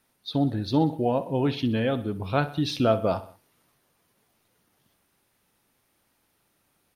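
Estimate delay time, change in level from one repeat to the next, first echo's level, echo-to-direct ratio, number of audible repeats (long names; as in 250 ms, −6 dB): 63 ms, −5.5 dB, −16.5 dB, −15.0 dB, 3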